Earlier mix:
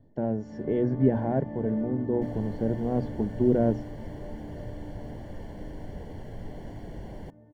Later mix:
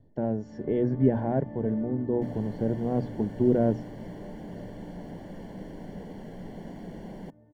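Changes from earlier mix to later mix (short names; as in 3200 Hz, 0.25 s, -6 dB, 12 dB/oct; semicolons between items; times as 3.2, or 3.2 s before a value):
first sound -3.5 dB; second sound: add resonant low shelf 140 Hz -8 dB, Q 3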